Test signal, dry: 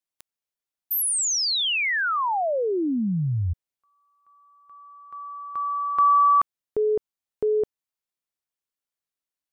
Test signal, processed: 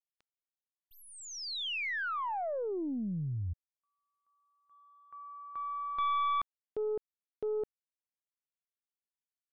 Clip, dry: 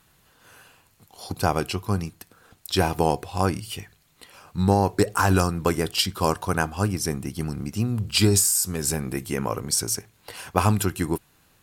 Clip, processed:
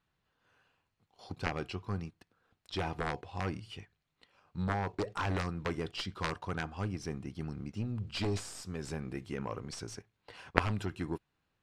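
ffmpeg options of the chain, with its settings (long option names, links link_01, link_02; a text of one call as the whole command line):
ffmpeg -i in.wav -af "agate=range=-8dB:threshold=-50dB:ratio=16:release=21:detection=peak,aeval=exprs='0.75*(cos(1*acos(clip(val(0)/0.75,-1,1)))-cos(1*PI/2))+0.0473*(cos(2*acos(clip(val(0)/0.75,-1,1)))-cos(2*PI/2))+0.335*(cos(3*acos(clip(val(0)/0.75,-1,1)))-cos(3*PI/2))+0.00473*(cos(6*acos(clip(val(0)/0.75,-1,1)))-cos(6*PI/2))':channel_layout=same,lowpass=3900,volume=-1dB" out.wav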